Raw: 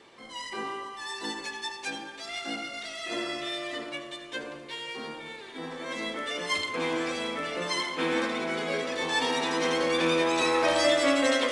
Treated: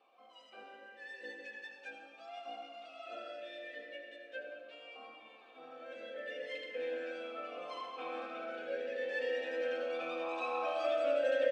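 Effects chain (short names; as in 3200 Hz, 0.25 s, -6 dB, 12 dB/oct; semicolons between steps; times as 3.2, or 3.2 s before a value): comb 3.9 ms, depth 45%; reverb RT60 3.0 s, pre-delay 77 ms, DRR 5.5 dB; vowel sweep a-e 0.38 Hz; gain -3 dB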